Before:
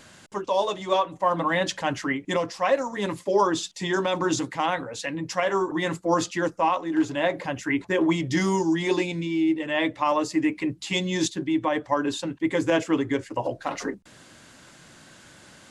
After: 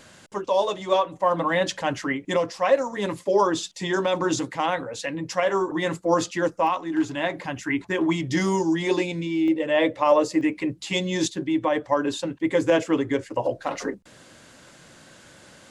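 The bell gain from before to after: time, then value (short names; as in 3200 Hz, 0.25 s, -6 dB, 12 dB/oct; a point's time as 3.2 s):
bell 520 Hz 0.51 oct
+3.5 dB
from 6.67 s -5.5 dB
from 8.29 s +4 dB
from 9.48 s +13 dB
from 10.41 s +5 dB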